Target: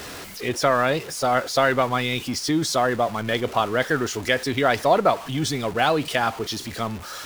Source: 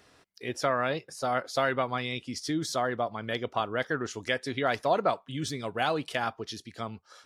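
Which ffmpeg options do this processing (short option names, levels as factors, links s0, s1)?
-af "aeval=exprs='val(0)+0.5*0.0119*sgn(val(0))':c=same,volume=2.24"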